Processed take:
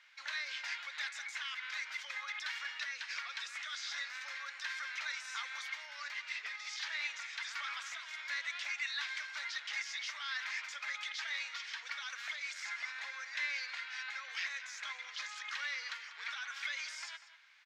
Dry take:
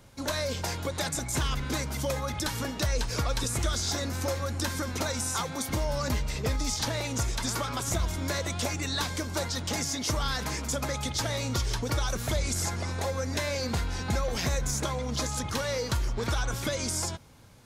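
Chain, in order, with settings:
brickwall limiter −25 dBFS, peak gain reduction 6.5 dB
four-pole ladder high-pass 1,600 Hz, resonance 45%
high-frequency loss of the air 200 metres
slap from a distant wall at 33 metres, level −13 dB
level +9.5 dB

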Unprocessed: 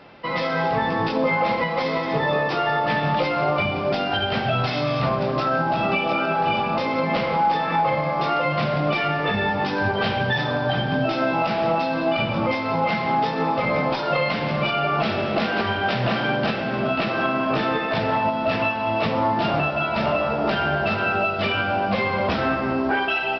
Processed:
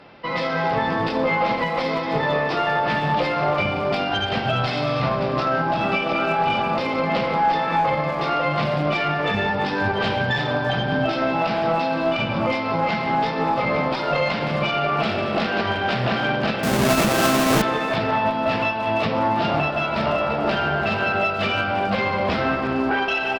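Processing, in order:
0:16.63–0:17.62: each half-wave held at its own peak
harmonic generator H 2 −15 dB, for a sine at −11 dBFS
far-end echo of a speakerphone 340 ms, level −9 dB

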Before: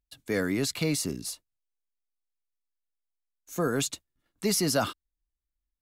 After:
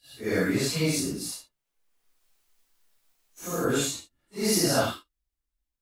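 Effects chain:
random phases in long frames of 200 ms
0:00.99–0:03.65: multiband upward and downward compressor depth 70%
level +2.5 dB

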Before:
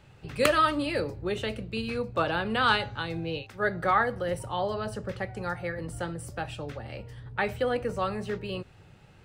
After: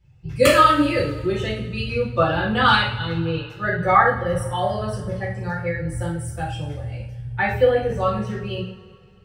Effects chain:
spectral dynamics exaggerated over time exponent 1.5
coupled-rooms reverb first 0.48 s, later 2.4 s, from −20 dB, DRR −7.5 dB
level +2.5 dB

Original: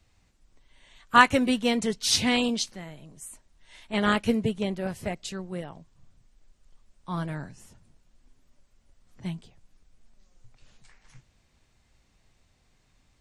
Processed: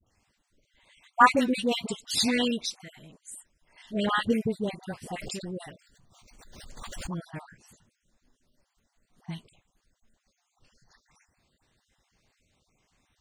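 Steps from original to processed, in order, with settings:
time-frequency cells dropped at random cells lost 42%
low-shelf EQ 77 Hz −12 dB
all-pass dispersion highs, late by 68 ms, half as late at 910 Hz
0:05.14–0:07.20: background raised ahead of every attack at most 27 dB per second

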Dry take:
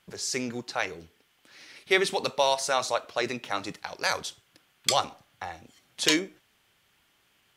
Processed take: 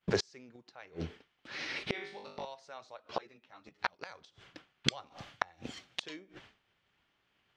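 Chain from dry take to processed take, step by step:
downward expander −54 dBFS
0:05.06–0:06.02: high-shelf EQ 3,100 Hz +9 dB
gate with flip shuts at −26 dBFS, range −34 dB
high-frequency loss of the air 160 metres
0:01.92–0:02.45: flutter between parallel walls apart 3.4 metres, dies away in 0.52 s
0:02.97–0:03.99: string-ensemble chorus
level +13 dB

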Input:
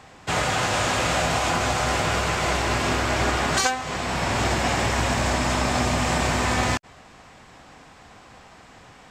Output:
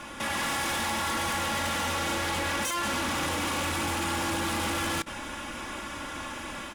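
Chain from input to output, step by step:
notch filter 3,200 Hz, Q 6.9
comb filter 4.8 ms, depth 53%
brickwall limiter −27 dBFS, peak gain reduction 19.5 dB
automatic gain control gain up to 4.5 dB
sine wavefolder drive 5 dB, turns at −22.5 dBFS
on a send at −15.5 dB: convolution reverb, pre-delay 5 ms
on the sum: wrong playback speed 33 rpm record played at 45 rpm
level −4 dB

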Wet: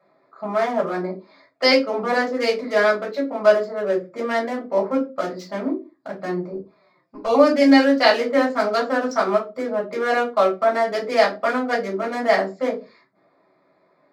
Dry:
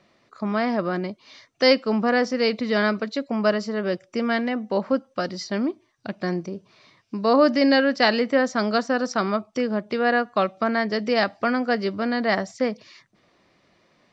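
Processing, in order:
adaptive Wiener filter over 15 samples
high-pass filter 280 Hz 12 dB per octave
0:06.53–0:07.36: flanger swept by the level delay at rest 5.9 ms, full sweep at −20 dBFS
convolution reverb RT60 0.25 s, pre-delay 3 ms, DRR −4.5 dB
level −6.5 dB

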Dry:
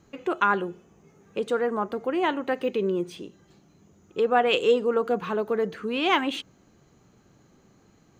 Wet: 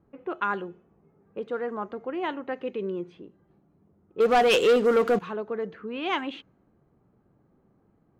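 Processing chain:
0:01.68–0:02.08: high-shelf EQ 3,700 Hz +6.5 dB
0:04.20–0:05.19: leveller curve on the samples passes 3
low-pass that shuts in the quiet parts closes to 1,100 Hz, open at −14.5 dBFS
level −5.5 dB

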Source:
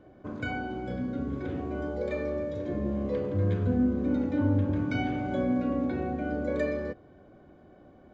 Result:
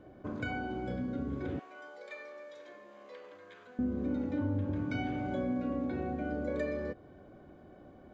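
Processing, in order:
downward compressor 2 to 1, threshold −35 dBFS, peak gain reduction 8 dB
0:01.59–0:03.79: high-pass filter 1,100 Hz 12 dB per octave

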